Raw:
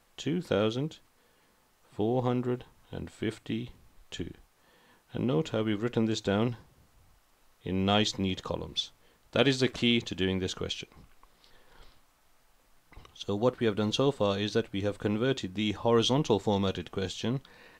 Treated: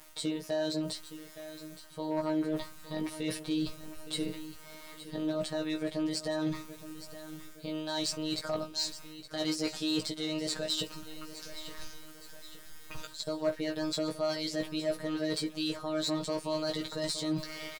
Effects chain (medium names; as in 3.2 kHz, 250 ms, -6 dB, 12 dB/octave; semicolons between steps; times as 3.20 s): treble shelf 4.7 kHz +9 dB; reverse; compression 8:1, threshold -38 dBFS, peak gain reduction 19.5 dB; reverse; robot voice 127 Hz; in parallel at -3.5 dB: wavefolder -33 dBFS; on the sum: pitch shift +3.5 st; doubling 16 ms -4 dB; feedback delay 867 ms, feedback 44%, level -13.5 dB; trim +5.5 dB